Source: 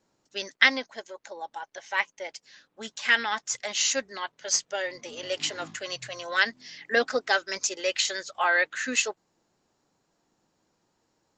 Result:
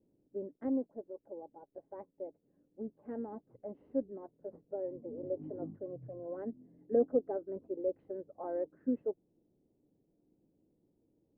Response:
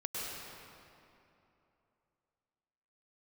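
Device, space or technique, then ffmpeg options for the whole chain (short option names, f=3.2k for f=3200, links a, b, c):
under water: -af "lowpass=f=480:w=0.5412,lowpass=f=480:w=1.3066,equalizer=f=290:t=o:w=0.26:g=5,volume=1dB"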